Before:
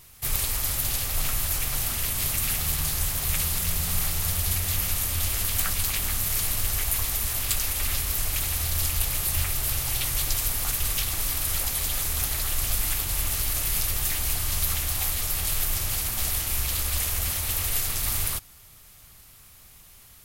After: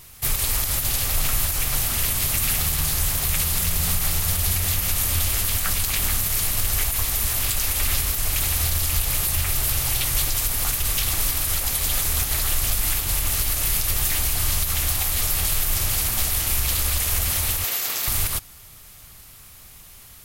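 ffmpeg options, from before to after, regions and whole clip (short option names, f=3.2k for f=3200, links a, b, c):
-filter_complex "[0:a]asettb=1/sr,asplit=3[a][b][c];[a]atrim=end=17.644[d];[b]atrim=start=17.64:end=18.08,asetpts=PTS-STARTPTS,afade=t=in:d=0.004:c=qsin,afade=t=out:st=0.436:d=0.004:c=qsin,highpass=330,equalizer=f=9.6k:t=o:w=0.25:g=-11.5,aeval=exprs='sgn(val(0))*max(abs(val(0))-0.00188,0)':c=same[e];[c]atrim=start=18.076[f];[d][e]acrossfade=d=0.004:c1=hsin:c2=qsin[g];[g][f]acrossfade=d=0.004:c1=qsin:c2=hsin,acontrast=38,alimiter=limit=-11dB:level=0:latency=1:release=89"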